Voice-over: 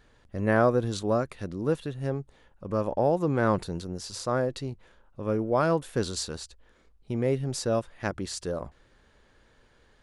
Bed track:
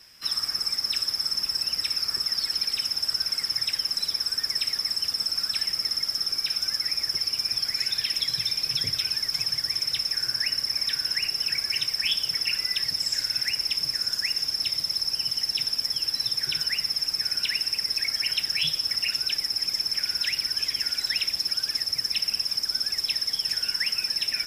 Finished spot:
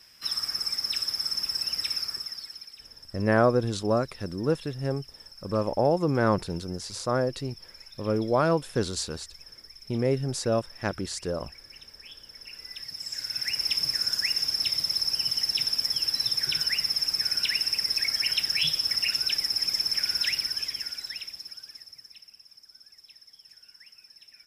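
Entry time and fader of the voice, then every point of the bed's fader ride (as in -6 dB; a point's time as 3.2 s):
2.80 s, +1.0 dB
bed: 1.96 s -2.5 dB
2.82 s -21.5 dB
12.24 s -21.5 dB
13.68 s 0 dB
20.29 s 0 dB
22.35 s -25.5 dB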